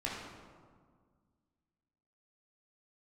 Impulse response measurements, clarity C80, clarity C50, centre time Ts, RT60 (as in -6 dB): 2.5 dB, 0.5 dB, 82 ms, 1.8 s